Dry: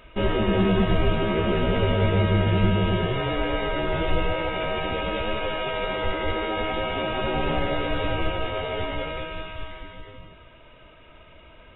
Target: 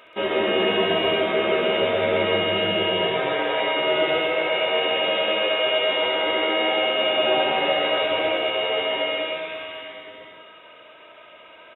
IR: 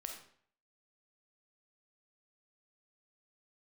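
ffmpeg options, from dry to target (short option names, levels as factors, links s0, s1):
-filter_complex "[0:a]highpass=420,aecho=1:1:13|69:0.168|0.447,asplit=2[s0][s1];[1:a]atrim=start_sample=2205,asetrate=42336,aresample=44100,adelay=131[s2];[s1][s2]afir=irnorm=-1:irlink=0,volume=1.06[s3];[s0][s3]amix=inputs=2:normalize=0,volume=1.41"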